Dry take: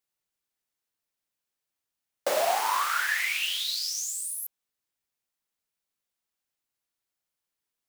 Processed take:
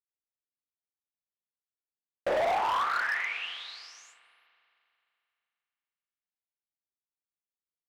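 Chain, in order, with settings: low-pass 1.9 kHz 12 dB/octave; gate -56 dBFS, range -20 dB; tilt shelf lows +3.5 dB, about 800 Hz; hard clipper -27.5 dBFS, distortion -9 dB; spring tank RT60 2.8 s, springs 37 ms, chirp 50 ms, DRR 14.5 dB; trim +3 dB

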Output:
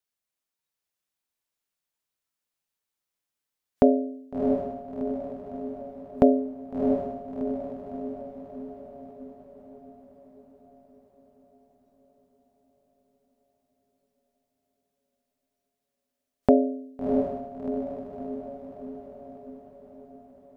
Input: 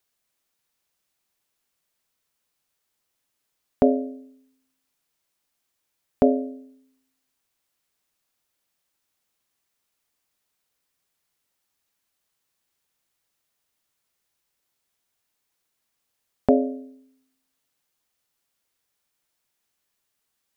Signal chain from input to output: spectral noise reduction 11 dB; echo that smears into a reverb 685 ms, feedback 58%, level -4.5 dB

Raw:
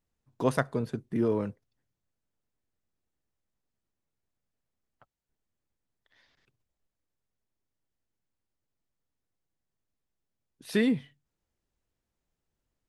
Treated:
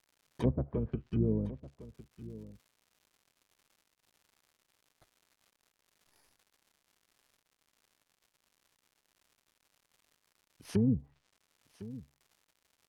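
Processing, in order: bit-reversed sample order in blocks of 16 samples; gate with hold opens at -55 dBFS; low-pass that closes with the level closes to 1.5 kHz, closed at -27 dBFS; harmony voices -12 st -4 dB; peaking EQ 60 Hz +3.5 dB 1.5 oct; crackle 220 per s -50 dBFS; low-pass that closes with the level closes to 410 Hz, closed at -22 dBFS; on a send: delay 1056 ms -16.5 dB; on the sum: trim -4 dB

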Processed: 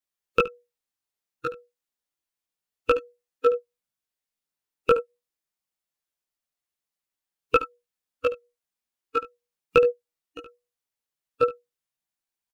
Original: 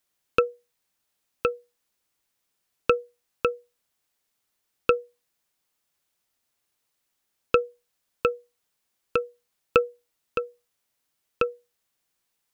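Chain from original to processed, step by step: chorus voices 4, 0.27 Hz, delay 18 ms, depth 3.8 ms; in parallel at +1.5 dB: peak limiter -20 dBFS, peak gain reduction 10.5 dB; on the sum: delay 72 ms -5.5 dB; spectral noise reduction 18 dB; trim +1.5 dB

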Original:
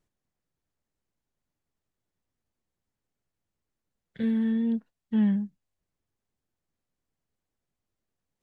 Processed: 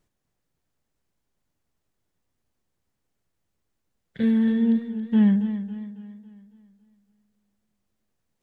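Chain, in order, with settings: modulated delay 276 ms, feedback 46%, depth 61 cents, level -11 dB; trim +5.5 dB

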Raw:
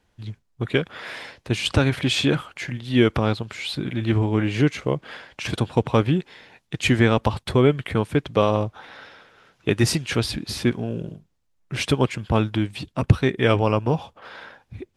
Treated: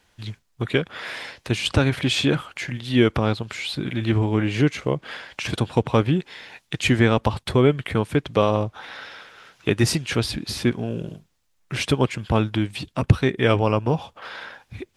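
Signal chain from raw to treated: tape noise reduction on one side only encoder only

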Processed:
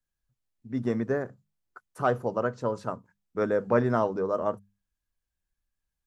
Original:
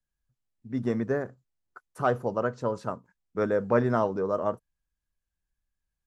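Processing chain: hum notches 50/100/150/200 Hz

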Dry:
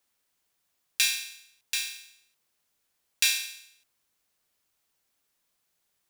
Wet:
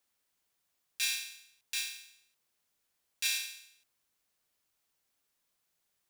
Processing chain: peak limiter -14.5 dBFS, peak gain reduction 11 dB; trim -3.5 dB

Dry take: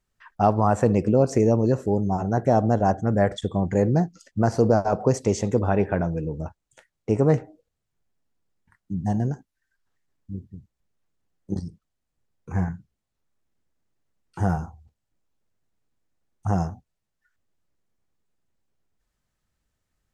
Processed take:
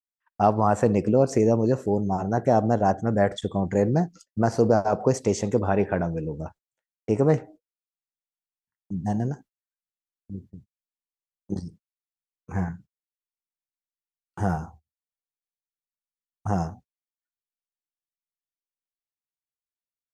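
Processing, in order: gate -43 dBFS, range -32 dB; bass shelf 90 Hz -8.5 dB

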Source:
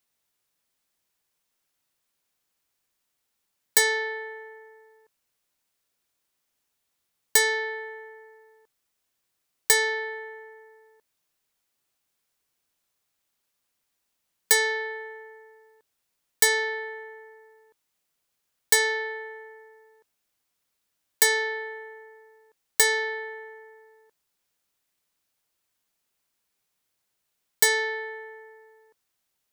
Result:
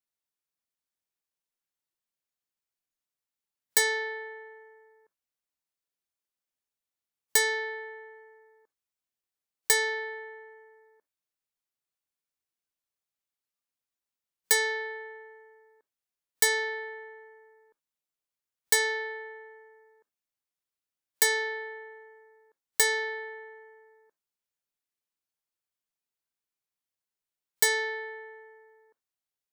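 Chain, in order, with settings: spectral noise reduction 11 dB; trim -3.5 dB

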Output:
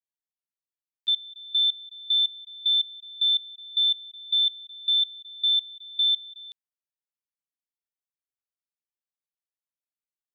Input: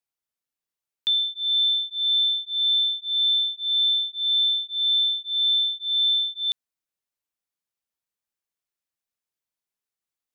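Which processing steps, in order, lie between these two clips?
level held to a coarse grid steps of 21 dB

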